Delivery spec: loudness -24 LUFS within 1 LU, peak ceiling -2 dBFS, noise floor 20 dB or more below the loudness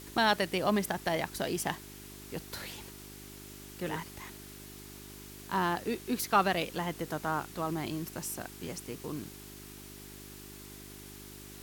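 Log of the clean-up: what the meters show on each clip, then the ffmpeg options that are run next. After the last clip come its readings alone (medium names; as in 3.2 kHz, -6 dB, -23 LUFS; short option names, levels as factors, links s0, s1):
hum 50 Hz; highest harmonic 400 Hz; hum level -48 dBFS; noise floor -48 dBFS; noise floor target -54 dBFS; loudness -33.5 LUFS; peak level -13.5 dBFS; loudness target -24.0 LUFS
-> -af "bandreject=f=50:t=h:w=4,bandreject=f=100:t=h:w=4,bandreject=f=150:t=h:w=4,bandreject=f=200:t=h:w=4,bandreject=f=250:t=h:w=4,bandreject=f=300:t=h:w=4,bandreject=f=350:t=h:w=4,bandreject=f=400:t=h:w=4"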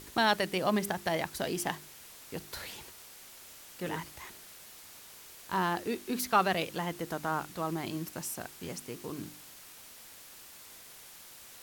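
hum not found; noise floor -52 dBFS; noise floor target -54 dBFS
-> -af "afftdn=nr=6:nf=-52"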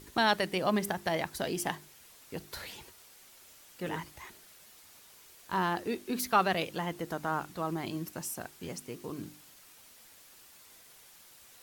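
noise floor -57 dBFS; loudness -33.5 LUFS; peak level -13.5 dBFS; loudness target -24.0 LUFS
-> -af "volume=2.99"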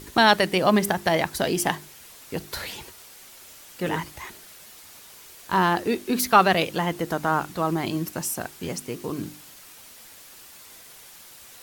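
loudness -24.0 LUFS; peak level -4.0 dBFS; noise floor -47 dBFS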